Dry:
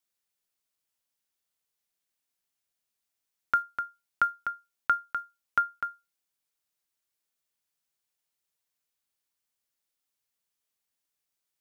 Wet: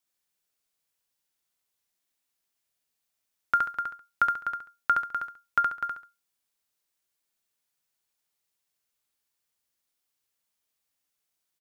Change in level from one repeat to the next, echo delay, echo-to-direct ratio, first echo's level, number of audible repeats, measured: -10.0 dB, 69 ms, -2.5 dB, -3.0 dB, 3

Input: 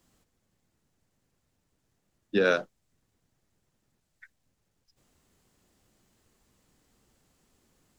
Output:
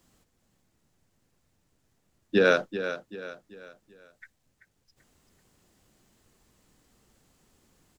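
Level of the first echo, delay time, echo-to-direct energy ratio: -11.0 dB, 0.386 s, -10.0 dB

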